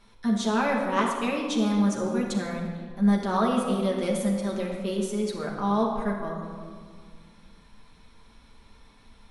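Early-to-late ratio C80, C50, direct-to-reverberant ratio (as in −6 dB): 4.5 dB, 2.5 dB, −3.0 dB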